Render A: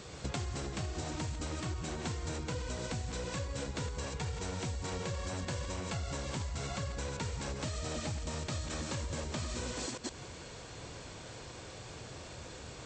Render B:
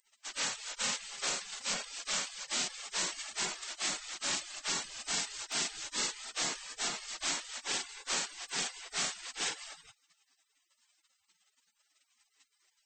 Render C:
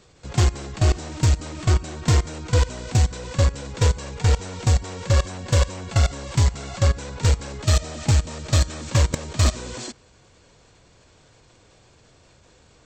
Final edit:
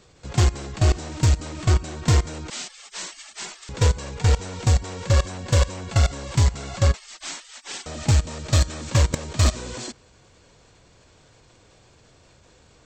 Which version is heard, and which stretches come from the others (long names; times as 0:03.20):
C
0:02.50–0:03.69: punch in from B
0:06.94–0:07.86: punch in from B
not used: A